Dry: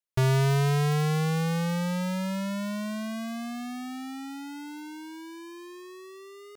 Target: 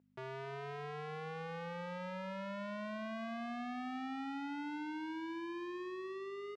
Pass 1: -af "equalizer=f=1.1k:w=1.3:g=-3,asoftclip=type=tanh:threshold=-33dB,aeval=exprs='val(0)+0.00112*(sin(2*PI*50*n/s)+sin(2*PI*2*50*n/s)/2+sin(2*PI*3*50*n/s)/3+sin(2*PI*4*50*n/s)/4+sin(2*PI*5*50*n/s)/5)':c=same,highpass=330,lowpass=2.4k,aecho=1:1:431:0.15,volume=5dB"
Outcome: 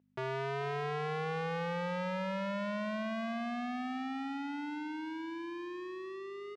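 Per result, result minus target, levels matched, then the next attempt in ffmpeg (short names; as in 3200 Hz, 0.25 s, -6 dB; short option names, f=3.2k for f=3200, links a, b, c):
echo 0.173 s late; soft clip: distortion -4 dB
-af "equalizer=f=1.1k:w=1.3:g=-3,asoftclip=type=tanh:threshold=-33dB,aeval=exprs='val(0)+0.00112*(sin(2*PI*50*n/s)+sin(2*PI*2*50*n/s)/2+sin(2*PI*3*50*n/s)/3+sin(2*PI*4*50*n/s)/4+sin(2*PI*5*50*n/s)/5)':c=same,highpass=330,lowpass=2.4k,aecho=1:1:258:0.15,volume=5dB"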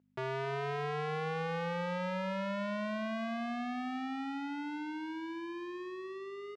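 soft clip: distortion -4 dB
-af "equalizer=f=1.1k:w=1.3:g=-3,asoftclip=type=tanh:threshold=-41.5dB,aeval=exprs='val(0)+0.00112*(sin(2*PI*50*n/s)+sin(2*PI*2*50*n/s)/2+sin(2*PI*3*50*n/s)/3+sin(2*PI*4*50*n/s)/4+sin(2*PI*5*50*n/s)/5)':c=same,highpass=330,lowpass=2.4k,aecho=1:1:258:0.15,volume=5dB"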